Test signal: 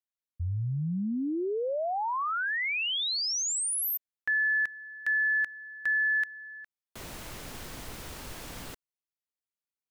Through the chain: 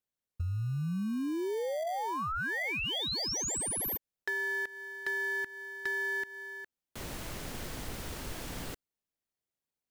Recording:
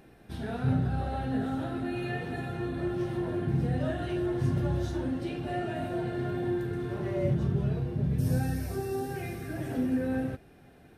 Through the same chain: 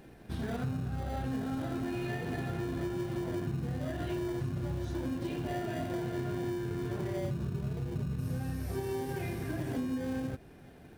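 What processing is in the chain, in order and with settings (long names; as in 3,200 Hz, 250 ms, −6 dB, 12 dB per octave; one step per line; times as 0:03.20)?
in parallel at −8 dB: decimation without filtering 33×
on the sum: downward compressor 10 to 1, threshold −31 dBFS
hard clipping −27 dBFS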